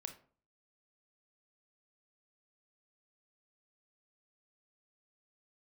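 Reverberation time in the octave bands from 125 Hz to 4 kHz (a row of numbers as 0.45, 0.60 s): 0.55, 0.50, 0.45, 0.45, 0.35, 0.25 s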